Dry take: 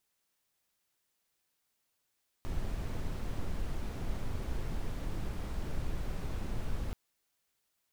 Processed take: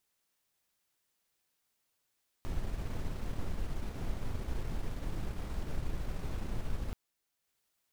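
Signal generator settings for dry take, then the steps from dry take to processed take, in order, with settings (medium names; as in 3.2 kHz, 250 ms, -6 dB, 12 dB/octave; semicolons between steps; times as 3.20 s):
noise brown, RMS -34 dBFS 4.48 s
transient shaper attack 0 dB, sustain -4 dB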